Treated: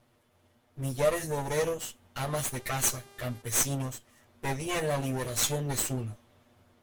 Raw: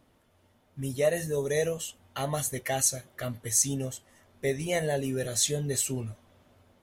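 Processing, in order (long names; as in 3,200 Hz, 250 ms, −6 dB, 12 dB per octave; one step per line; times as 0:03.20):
lower of the sound and its delayed copy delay 8.4 ms
0:02.21–0:03.41: hum with harmonics 400 Hz, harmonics 32, −56 dBFS −4 dB per octave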